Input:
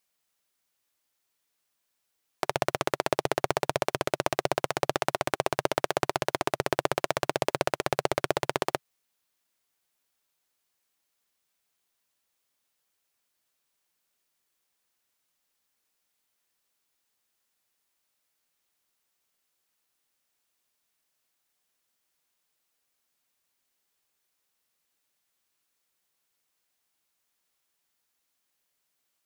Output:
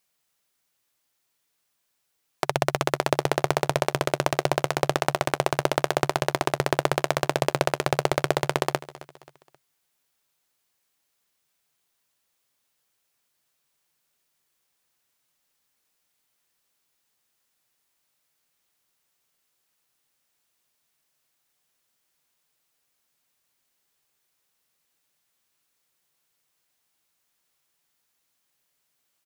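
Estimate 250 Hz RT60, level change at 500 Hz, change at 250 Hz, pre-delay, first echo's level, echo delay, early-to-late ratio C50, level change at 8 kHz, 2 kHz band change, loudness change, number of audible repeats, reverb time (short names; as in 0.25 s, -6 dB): none, +3.5 dB, +4.5 dB, none, -18.0 dB, 0.266 s, none, +3.5 dB, +3.5 dB, +4.0 dB, 3, none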